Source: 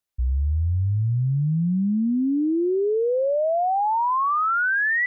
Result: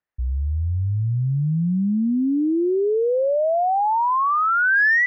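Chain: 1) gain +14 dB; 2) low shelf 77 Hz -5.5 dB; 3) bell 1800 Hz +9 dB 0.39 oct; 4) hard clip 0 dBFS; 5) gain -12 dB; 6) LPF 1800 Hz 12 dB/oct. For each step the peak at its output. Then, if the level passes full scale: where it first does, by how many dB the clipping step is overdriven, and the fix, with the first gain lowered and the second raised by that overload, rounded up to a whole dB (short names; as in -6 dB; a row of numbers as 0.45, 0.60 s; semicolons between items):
-4.5, -4.5, +4.5, 0.0, -12.0, -13.0 dBFS; step 3, 4.5 dB; step 1 +9 dB, step 5 -7 dB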